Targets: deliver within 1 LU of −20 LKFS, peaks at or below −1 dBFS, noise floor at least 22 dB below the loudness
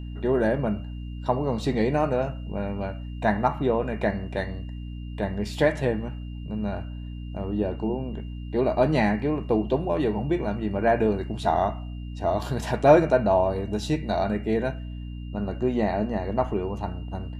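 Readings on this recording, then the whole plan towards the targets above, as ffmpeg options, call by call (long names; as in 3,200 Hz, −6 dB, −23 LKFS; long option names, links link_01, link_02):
mains hum 60 Hz; hum harmonics up to 300 Hz; level of the hum −32 dBFS; interfering tone 2,800 Hz; level of the tone −54 dBFS; integrated loudness −25.5 LKFS; sample peak −4.5 dBFS; target loudness −20.0 LKFS
→ -af "bandreject=frequency=60:width_type=h:width=6,bandreject=frequency=120:width_type=h:width=6,bandreject=frequency=180:width_type=h:width=6,bandreject=frequency=240:width_type=h:width=6,bandreject=frequency=300:width_type=h:width=6"
-af "bandreject=frequency=2800:width=30"
-af "volume=5.5dB,alimiter=limit=-1dB:level=0:latency=1"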